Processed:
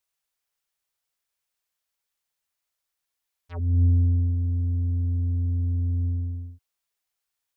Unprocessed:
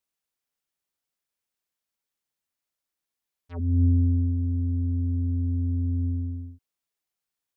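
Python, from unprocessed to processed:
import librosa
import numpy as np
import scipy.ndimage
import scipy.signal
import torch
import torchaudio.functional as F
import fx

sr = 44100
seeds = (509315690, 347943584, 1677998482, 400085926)

y = fx.peak_eq(x, sr, hz=230.0, db=-10.5, octaves=1.6)
y = y * librosa.db_to_amplitude(4.0)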